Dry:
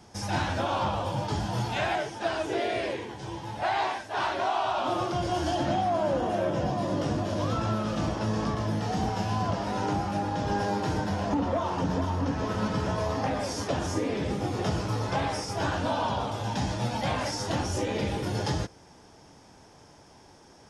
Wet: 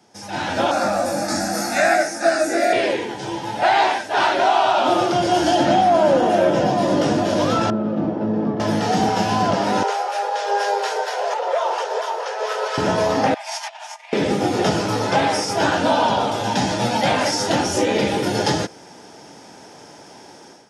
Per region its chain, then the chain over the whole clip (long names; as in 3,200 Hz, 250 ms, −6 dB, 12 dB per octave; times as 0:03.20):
0:00.71–0:02.73: high-shelf EQ 4,400 Hz +10.5 dB + phaser with its sweep stopped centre 630 Hz, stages 8 + double-tracking delay 21 ms −4 dB
0:07.70–0:08.60: resonant band-pass 250 Hz, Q 0.77 + high-frequency loss of the air 78 metres
0:09.83–0:12.78: Butterworth high-pass 400 Hz 96 dB per octave + two-band tremolo in antiphase 4.3 Hz, depth 50%, crossover 970 Hz
0:13.34–0:14.13: compressor whose output falls as the input rises −34 dBFS, ratio −0.5 + Chebyshev high-pass with heavy ripple 630 Hz, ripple 9 dB
whole clip: high-pass filter 200 Hz 12 dB per octave; notch filter 1,100 Hz, Q 7.7; automatic gain control gain up to 14 dB; level −1.5 dB